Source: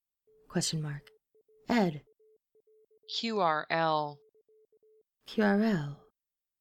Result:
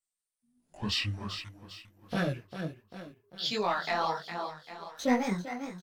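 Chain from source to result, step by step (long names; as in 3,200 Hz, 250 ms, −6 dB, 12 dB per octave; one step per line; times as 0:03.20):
gliding playback speed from 61% → 166%
high-shelf EQ 9,300 Hz +7.5 dB
repeating echo 399 ms, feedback 49%, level −12 dB
flanger 0.99 Hz, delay 2.8 ms, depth 2.7 ms, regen +49%
pitch shifter −4 semitones
in parallel at −1.5 dB: brickwall limiter −29 dBFS, peak gain reduction 12.5 dB
on the sum: low-shelf EQ 370 Hz −4 dB
leveller curve on the samples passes 1
micro pitch shift up and down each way 48 cents
level +1.5 dB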